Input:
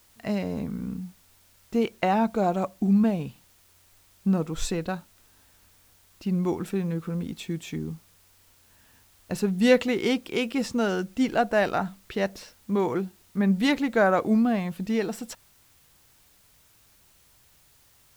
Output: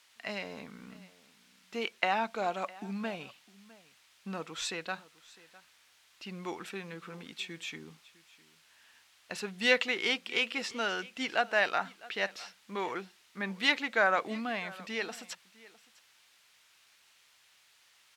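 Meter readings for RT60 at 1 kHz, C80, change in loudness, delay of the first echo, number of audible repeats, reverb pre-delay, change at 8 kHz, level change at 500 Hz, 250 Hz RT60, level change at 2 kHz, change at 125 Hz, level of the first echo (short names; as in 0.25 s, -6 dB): none, none, -6.5 dB, 0.656 s, 1, none, -4.5 dB, -9.5 dB, none, +1.5 dB, -18.5 dB, -21.0 dB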